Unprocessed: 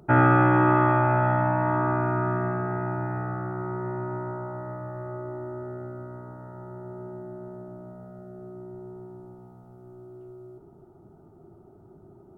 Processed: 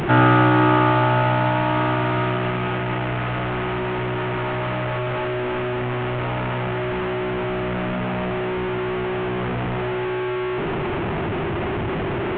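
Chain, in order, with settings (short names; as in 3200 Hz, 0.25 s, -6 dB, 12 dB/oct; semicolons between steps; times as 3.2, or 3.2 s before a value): delta modulation 16 kbps, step -21.5 dBFS; gain +3.5 dB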